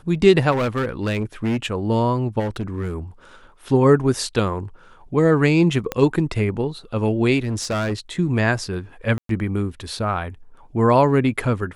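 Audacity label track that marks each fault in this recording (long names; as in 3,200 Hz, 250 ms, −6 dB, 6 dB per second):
0.510000	1.660000	clipping −18 dBFS
2.390000	2.950000	clipping −21 dBFS
5.920000	5.920000	click −9 dBFS
7.430000	7.940000	clipping −19.5 dBFS
9.180000	9.290000	drop-out 113 ms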